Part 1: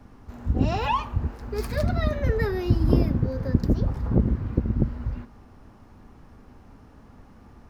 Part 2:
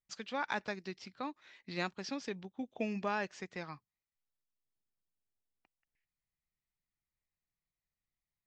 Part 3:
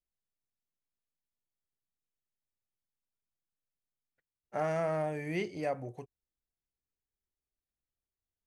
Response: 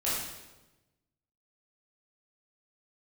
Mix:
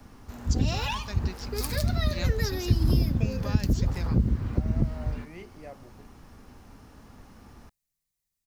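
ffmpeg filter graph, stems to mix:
-filter_complex "[0:a]highshelf=f=2.9k:g=11.5,volume=-1dB[a];[1:a]bass=f=250:g=3,treble=f=4k:g=12,adelay=400,volume=0.5dB[b];[2:a]volume=-10.5dB[c];[a][b][c]amix=inputs=3:normalize=0,acrossover=split=210|3000[d][e][f];[e]acompressor=threshold=-33dB:ratio=6[g];[d][g][f]amix=inputs=3:normalize=0"

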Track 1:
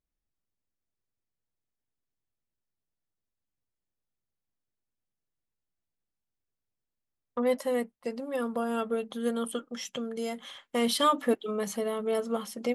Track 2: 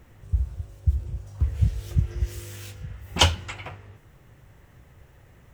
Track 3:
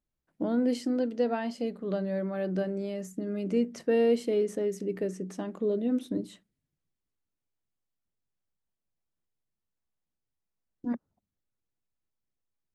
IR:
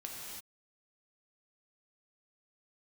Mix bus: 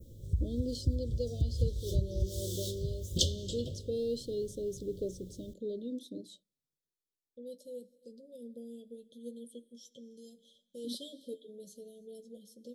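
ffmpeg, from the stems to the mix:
-filter_complex "[0:a]flanger=delay=8.1:depth=3.1:regen=44:speed=0.22:shape=sinusoidal,volume=-13.5dB,asplit=2[a][b];[b]volume=-14.5dB[c];[1:a]acompressor=threshold=-30dB:ratio=3,volume=0.5dB,asplit=2[d][e];[e]volume=-17.5dB[f];[2:a]highpass=f=440:p=1,aphaser=in_gain=1:out_gain=1:delay=2.9:decay=0.35:speed=0.2:type=triangular,volume=-4.5dB[g];[3:a]atrim=start_sample=2205[h];[c][f]amix=inputs=2:normalize=0[i];[i][h]afir=irnorm=-1:irlink=0[j];[a][d][g][j]amix=inputs=4:normalize=0,adynamicequalizer=threshold=0.00126:dfrequency=3600:dqfactor=0.99:tfrequency=3600:tqfactor=0.99:attack=5:release=100:ratio=0.375:range=3:mode=boostabove:tftype=bell,asuperstop=centerf=1400:order=20:qfactor=0.51"

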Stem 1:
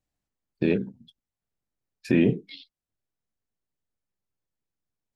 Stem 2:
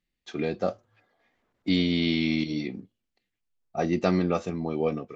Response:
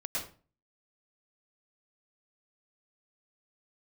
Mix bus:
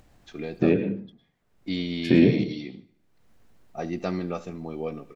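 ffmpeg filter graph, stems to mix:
-filter_complex "[0:a]highshelf=f=3.7k:g=-12,acompressor=mode=upward:threshold=-40dB:ratio=2.5,volume=1dB,asplit=2[a][b];[b]volume=-9dB[c];[1:a]volume=-5.5dB,asplit=2[d][e];[e]volume=-18.5dB[f];[2:a]atrim=start_sample=2205[g];[c][g]afir=irnorm=-1:irlink=0[h];[f]aecho=0:1:74|148|222|296|370|444|518:1|0.48|0.23|0.111|0.0531|0.0255|0.0122[i];[a][d][h][i]amix=inputs=4:normalize=0"

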